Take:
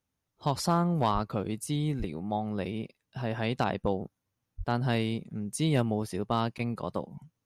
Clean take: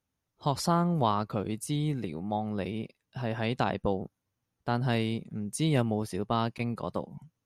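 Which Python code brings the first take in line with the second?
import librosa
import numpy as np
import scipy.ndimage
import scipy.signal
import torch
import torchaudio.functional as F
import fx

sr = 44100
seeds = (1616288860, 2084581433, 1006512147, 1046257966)

y = fx.fix_declip(x, sr, threshold_db=-16.5)
y = fx.fix_deplosive(y, sr, at_s=(1.13, 1.98, 4.57))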